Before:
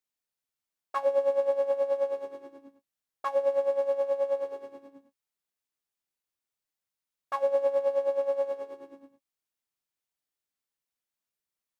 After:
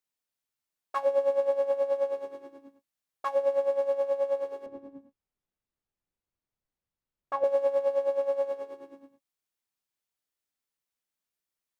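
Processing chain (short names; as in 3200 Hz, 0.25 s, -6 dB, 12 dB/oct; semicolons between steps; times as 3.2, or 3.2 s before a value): 4.66–7.44 tilt -3.5 dB/oct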